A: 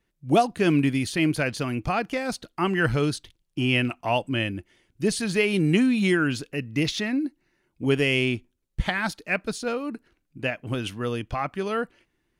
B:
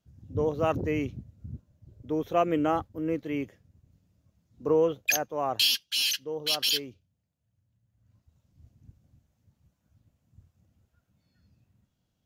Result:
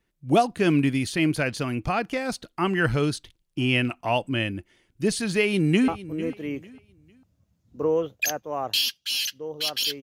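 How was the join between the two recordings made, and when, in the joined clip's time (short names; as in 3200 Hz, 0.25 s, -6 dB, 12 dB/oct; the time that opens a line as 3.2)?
A
5.38–5.88 echo throw 0.45 s, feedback 30%, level -16 dB
5.88 switch to B from 2.74 s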